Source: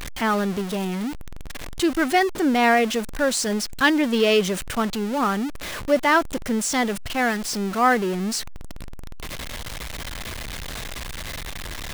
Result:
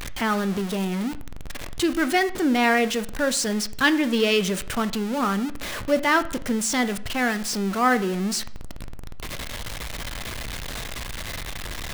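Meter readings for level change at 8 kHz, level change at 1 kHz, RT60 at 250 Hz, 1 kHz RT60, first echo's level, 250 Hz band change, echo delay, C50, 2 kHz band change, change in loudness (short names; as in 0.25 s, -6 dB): 0.0 dB, -3.0 dB, 0.55 s, 0.55 s, none, -0.5 dB, none, 17.0 dB, -1.0 dB, -1.5 dB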